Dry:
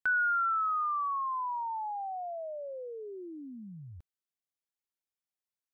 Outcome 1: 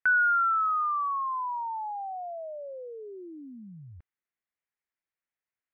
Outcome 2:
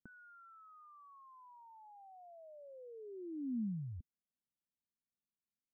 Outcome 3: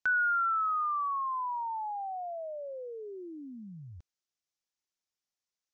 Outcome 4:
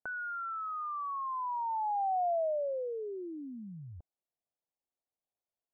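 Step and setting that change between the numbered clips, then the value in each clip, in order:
low-pass with resonance, frequency: 2,000, 230, 6,000, 700 Hertz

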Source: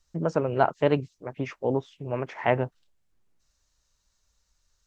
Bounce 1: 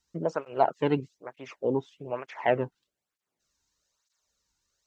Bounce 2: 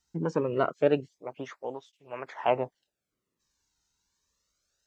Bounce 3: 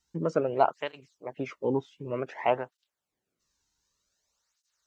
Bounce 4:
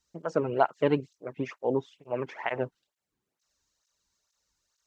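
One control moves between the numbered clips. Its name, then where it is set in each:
through-zero flanger with one copy inverted, nulls at: 1.1, 0.26, 0.54, 2.2 Hertz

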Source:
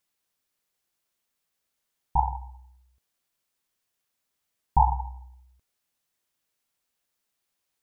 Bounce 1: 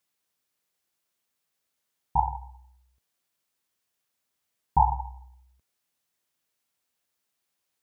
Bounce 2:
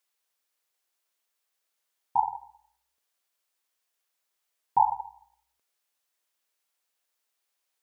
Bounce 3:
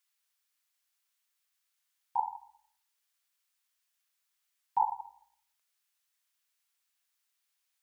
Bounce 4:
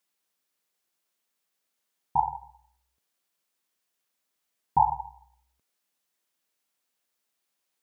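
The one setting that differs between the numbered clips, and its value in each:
high-pass filter, corner frequency: 65, 440, 1,200, 170 Hertz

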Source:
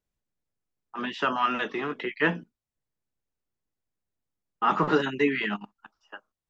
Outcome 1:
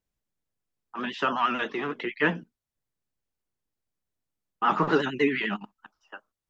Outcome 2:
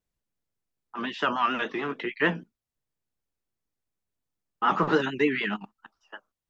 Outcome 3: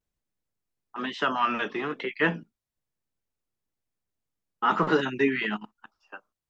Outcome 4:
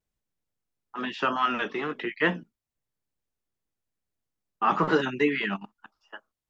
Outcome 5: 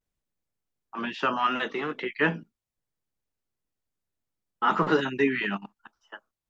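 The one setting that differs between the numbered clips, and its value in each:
pitch vibrato, speed: 11, 6.7, 1.1, 2.3, 0.7 Hertz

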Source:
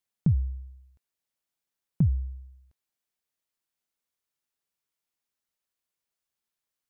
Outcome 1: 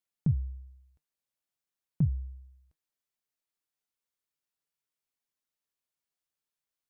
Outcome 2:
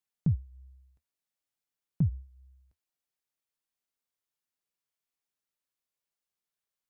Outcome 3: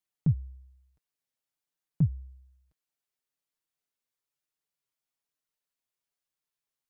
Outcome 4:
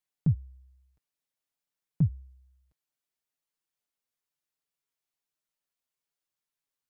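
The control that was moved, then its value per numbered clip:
flanger, regen: +73, −65, +14, −7%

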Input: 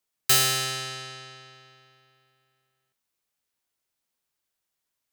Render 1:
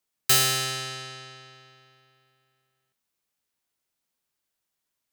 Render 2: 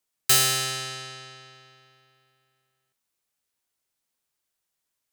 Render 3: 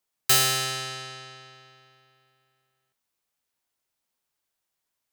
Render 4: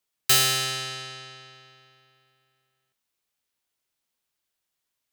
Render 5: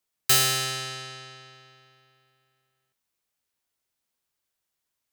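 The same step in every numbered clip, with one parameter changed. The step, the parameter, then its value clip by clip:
parametric band, centre frequency: 200, 8,900, 840, 3,200, 74 Hertz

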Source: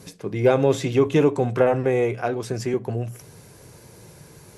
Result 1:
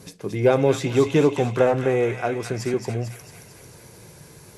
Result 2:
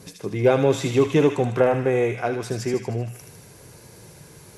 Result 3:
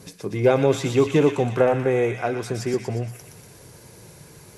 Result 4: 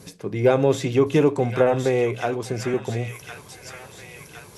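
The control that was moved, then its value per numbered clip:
delay with a high-pass on its return, delay time: 223, 77, 119, 1,063 milliseconds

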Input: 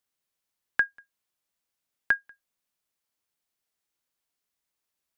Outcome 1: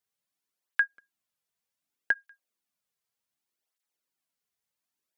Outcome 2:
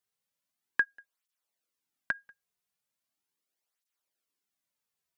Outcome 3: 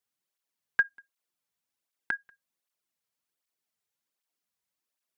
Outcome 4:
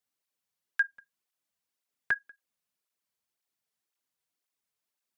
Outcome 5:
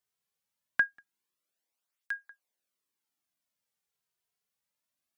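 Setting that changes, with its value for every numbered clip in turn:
through-zero flanger with one copy inverted, nulls at: 0.66, 0.39, 1.3, 1.9, 0.24 Hertz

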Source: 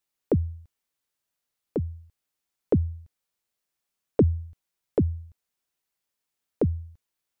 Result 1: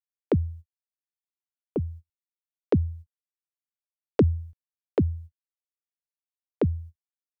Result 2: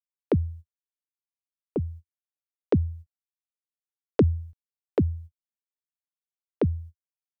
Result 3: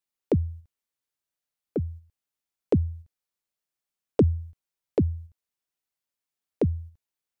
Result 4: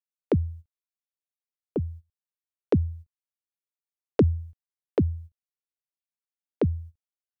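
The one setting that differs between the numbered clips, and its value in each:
noise gate, range: −38, −58, −6, −21 decibels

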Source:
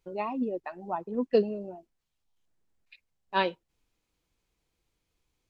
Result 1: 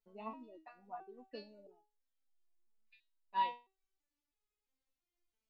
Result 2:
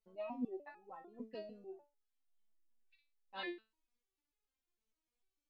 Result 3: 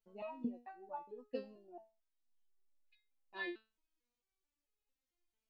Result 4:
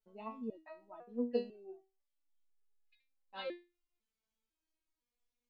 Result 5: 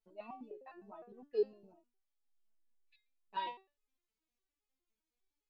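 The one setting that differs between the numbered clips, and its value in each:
step-sequenced resonator, speed: 3, 6.7, 4.5, 2, 9.8 Hertz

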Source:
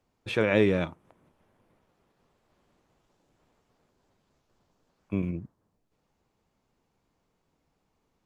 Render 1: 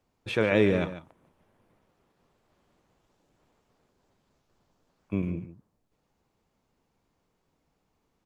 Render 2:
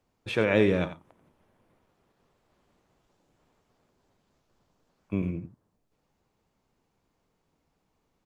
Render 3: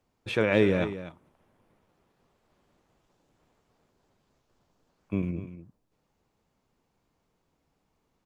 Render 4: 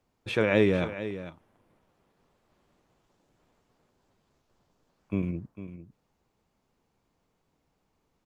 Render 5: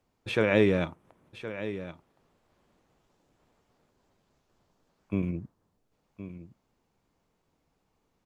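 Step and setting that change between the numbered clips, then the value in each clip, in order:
single-tap delay, delay time: 144, 88, 245, 451, 1,067 milliseconds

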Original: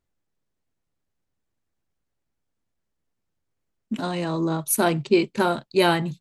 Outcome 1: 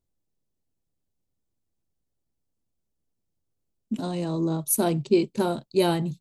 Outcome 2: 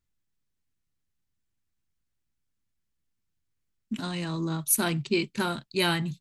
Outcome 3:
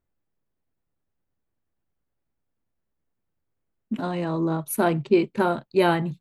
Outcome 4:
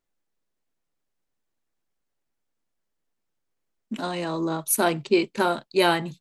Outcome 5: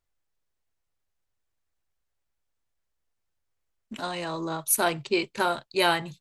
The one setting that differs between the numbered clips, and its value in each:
parametric band, centre frequency: 1,700, 580, 6,500, 82, 210 Hertz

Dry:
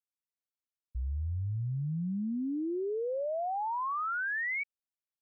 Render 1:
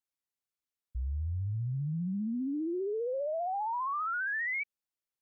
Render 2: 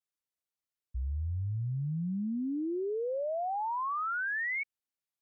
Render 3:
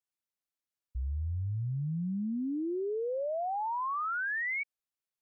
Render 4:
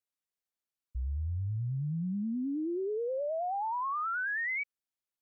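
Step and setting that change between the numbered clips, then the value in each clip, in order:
pitch vibrato, speed: 15, 0.37, 1.2, 9.4 Hertz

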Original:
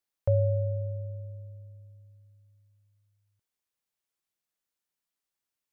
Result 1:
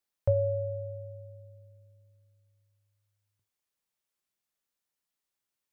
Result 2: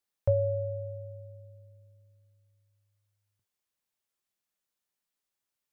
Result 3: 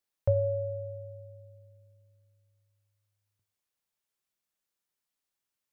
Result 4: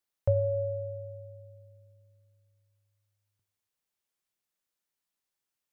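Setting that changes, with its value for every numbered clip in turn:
reverb whose tail is shaped and stops, gate: 120, 80, 210, 330 milliseconds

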